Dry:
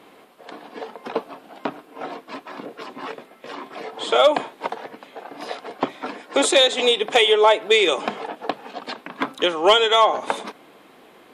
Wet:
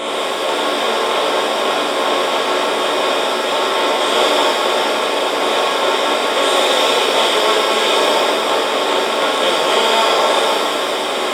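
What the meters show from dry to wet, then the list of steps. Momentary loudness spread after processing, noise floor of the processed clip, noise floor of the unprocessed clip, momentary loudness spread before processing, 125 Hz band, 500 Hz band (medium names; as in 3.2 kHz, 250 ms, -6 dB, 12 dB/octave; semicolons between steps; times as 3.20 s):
4 LU, -19 dBFS, -50 dBFS, 21 LU, no reading, +5.5 dB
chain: spectral levelling over time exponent 0.2; pitch-shifted reverb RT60 1.2 s, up +7 st, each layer -8 dB, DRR -5.5 dB; trim -13 dB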